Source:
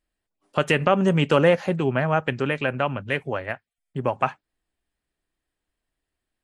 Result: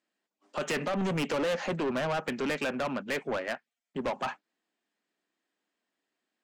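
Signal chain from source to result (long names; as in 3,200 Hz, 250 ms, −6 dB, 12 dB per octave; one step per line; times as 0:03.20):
elliptic band-pass filter 210–7,300 Hz
brickwall limiter −12.5 dBFS, peak gain reduction 6.5 dB
soft clipping −28.5 dBFS, distortion −6 dB
level +2 dB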